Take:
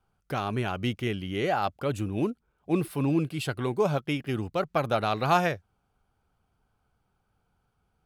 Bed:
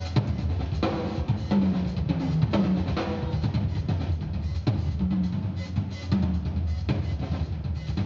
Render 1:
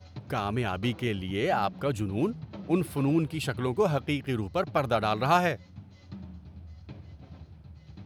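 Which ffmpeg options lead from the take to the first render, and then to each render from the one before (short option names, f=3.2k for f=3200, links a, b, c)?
-filter_complex "[1:a]volume=-18.5dB[a];[0:a][a]amix=inputs=2:normalize=0"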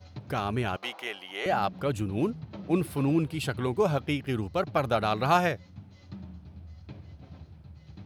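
-filter_complex "[0:a]asettb=1/sr,asplit=3[a][b][c];[a]atrim=end=0.764[d];[b]atrim=start=0.76:end=1.46,asetpts=PTS-STARTPTS,afade=t=in:d=0.004:c=qsin,afade=t=out:st=0.696:d=0.004:c=qsin,highpass=f=780:t=q:w=2.5[e];[c]atrim=start=1.456[f];[d][e]acrossfade=d=0.004:c1=hsin:c2=qsin[g];[g][f]acrossfade=d=0.004:c1=qsin:c2=hsin"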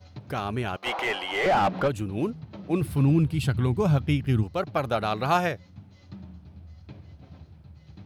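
-filter_complex "[0:a]asplit=3[a][b][c];[a]afade=t=out:st=0.85:d=0.02[d];[b]asplit=2[e][f];[f]highpass=f=720:p=1,volume=27dB,asoftclip=type=tanh:threshold=-13.5dB[g];[e][g]amix=inputs=2:normalize=0,lowpass=f=1.4k:p=1,volume=-6dB,afade=t=in:st=0.85:d=0.02,afade=t=out:st=1.87:d=0.02[h];[c]afade=t=in:st=1.87:d=0.02[i];[d][h][i]amix=inputs=3:normalize=0,asplit=3[j][k][l];[j]afade=t=out:st=2.81:d=0.02[m];[k]asubboost=boost=4.5:cutoff=220,afade=t=in:st=2.81:d=0.02,afade=t=out:st=4.42:d=0.02[n];[l]afade=t=in:st=4.42:d=0.02[o];[m][n][o]amix=inputs=3:normalize=0"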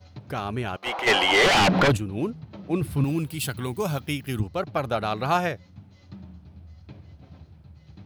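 -filter_complex "[0:a]asplit=3[a][b][c];[a]afade=t=out:st=1.06:d=0.02[d];[b]aeval=exprs='0.188*sin(PI/2*2.82*val(0)/0.188)':c=same,afade=t=in:st=1.06:d=0.02,afade=t=out:st=1.96:d=0.02[e];[c]afade=t=in:st=1.96:d=0.02[f];[d][e][f]amix=inputs=3:normalize=0,asettb=1/sr,asplit=3[g][h][i];[g]atrim=end=3.044[j];[h]atrim=start=3.04:end=4.4,asetpts=PTS-STARTPTS,afade=t=in:d=0.004:c=qsin,afade=t=out:st=1.356:d=0.004:c=qsin,aemphasis=mode=production:type=bsi[k];[i]atrim=start=4.396[l];[j][k]acrossfade=d=0.004:c1=hsin:c2=qsin[m];[m][l]acrossfade=d=0.004:c1=qsin:c2=hsin"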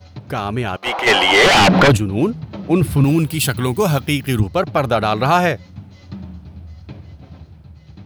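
-filter_complex "[0:a]asplit=2[a][b];[b]alimiter=limit=-18dB:level=0:latency=1:release=16,volume=3dB[c];[a][c]amix=inputs=2:normalize=0,dynaudnorm=f=490:g=7:m=4.5dB"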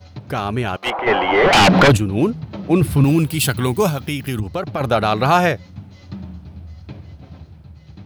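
-filter_complex "[0:a]asettb=1/sr,asplit=3[a][b][c];[a]atrim=end=0.904[d];[b]atrim=start=0.9:end=1.53,asetpts=PTS-STARTPTS,afade=t=in:d=0.004:c=qsin,afade=t=out:st=0.626:d=0.004:c=qsin,lowpass=1.5k[e];[c]atrim=start=1.526[f];[d][e]acrossfade=d=0.004:c1=hsin:c2=qsin[g];[g][f]acrossfade=d=0.004:c1=qsin:c2=hsin,asettb=1/sr,asplit=3[h][i][j];[h]atrim=end=3.894[k];[i]atrim=start=3.89:end=4.81,asetpts=PTS-STARTPTS,afade=t=in:d=0.004:c=qsin,afade=t=out:st=0.916:d=0.004:c=qsin,acompressor=threshold=-19dB:ratio=4:attack=3.2:release=140:knee=1:detection=peak[l];[j]atrim=start=4.806[m];[k][l]acrossfade=d=0.004:c1=hsin:c2=qsin[n];[n][m]acrossfade=d=0.004:c1=qsin:c2=hsin"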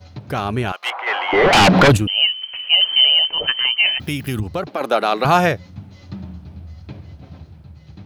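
-filter_complex "[0:a]asettb=1/sr,asplit=3[a][b][c];[a]atrim=end=0.724[d];[b]atrim=start=0.72:end=1.33,asetpts=PTS-STARTPTS,afade=t=in:d=0.004:c=qsin,afade=t=out:st=0.606:d=0.004:c=qsin,highpass=1k[e];[c]atrim=start=1.326[f];[d][e]acrossfade=d=0.004:c1=hsin:c2=qsin[g];[g][f]acrossfade=d=0.004:c1=qsin:c2=hsin,asettb=1/sr,asplit=3[h][i][j];[h]atrim=end=2.074[k];[i]atrim=start=2.07:end=4,asetpts=PTS-STARTPTS,afade=t=in:d=0.004:c=qsin,afade=t=out:st=1.926:d=0.004:c=qsin,lowpass=f=2.7k:t=q:w=0.5098,lowpass=f=2.7k:t=q:w=0.6013,lowpass=f=2.7k:t=q:w=0.9,lowpass=f=2.7k:t=q:w=2.563,afreqshift=-3200[l];[j]atrim=start=3.996[m];[k][l]acrossfade=d=0.004:c1=hsin:c2=qsin[n];[n][m]acrossfade=d=0.004:c1=qsin:c2=hsin,asettb=1/sr,asplit=3[o][p][q];[o]atrim=end=4.674[r];[p]atrim=start=4.67:end=5.25,asetpts=PTS-STARTPTS,afade=t=in:d=0.004:c=qsin,afade=t=out:st=0.576:d=0.004:c=qsin,highpass=f=260:w=0.5412,highpass=f=260:w=1.3066[s];[q]atrim=start=5.246[t];[r][s]acrossfade=d=0.004:c1=hsin:c2=qsin[u];[u][t]acrossfade=d=0.004:c1=qsin:c2=hsin"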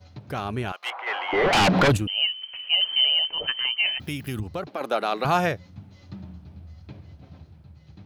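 -af "volume=-7.5dB"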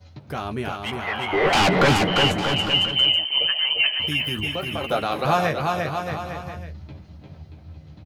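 -filter_complex "[0:a]asplit=2[a][b];[b]adelay=13,volume=-7dB[c];[a][c]amix=inputs=2:normalize=0,aecho=1:1:350|630|854|1033|1177:0.631|0.398|0.251|0.158|0.1"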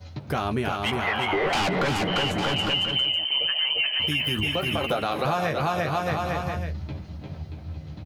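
-filter_complex "[0:a]asplit=2[a][b];[b]alimiter=limit=-17dB:level=0:latency=1,volume=-1dB[c];[a][c]amix=inputs=2:normalize=0,acompressor=threshold=-22dB:ratio=6"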